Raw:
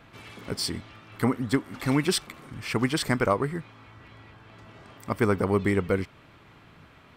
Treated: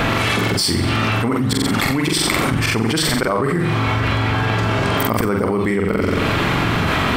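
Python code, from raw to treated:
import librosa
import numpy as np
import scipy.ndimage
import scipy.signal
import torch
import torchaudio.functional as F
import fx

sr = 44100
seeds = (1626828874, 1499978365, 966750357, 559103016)

y = fx.hum_notches(x, sr, base_hz=50, count=3)
y = fx.auto_swell(y, sr, attack_ms=471.0)
y = fx.room_flutter(y, sr, wall_m=7.7, rt60_s=0.53)
y = fx.env_flatten(y, sr, amount_pct=100)
y = F.gain(torch.from_numpy(y), 1.5).numpy()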